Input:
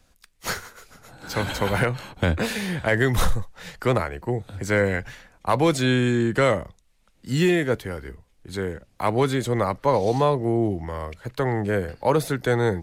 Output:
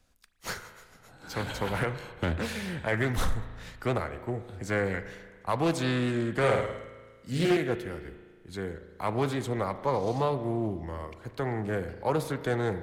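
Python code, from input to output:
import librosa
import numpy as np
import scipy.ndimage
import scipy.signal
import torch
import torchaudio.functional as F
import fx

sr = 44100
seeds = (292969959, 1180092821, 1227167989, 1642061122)

y = fx.room_flutter(x, sr, wall_m=9.1, rt60_s=0.73, at=(6.33, 7.57))
y = fx.rev_spring(y, sr, rt60_s=1.7, pass_ms=(36,), chirp_ms=40, drr_db=11.0)
y = fx.doppler_dist(y, sr, depth_ms=0.37)
y = y * 10.0 ** (-7.5 / 20.0)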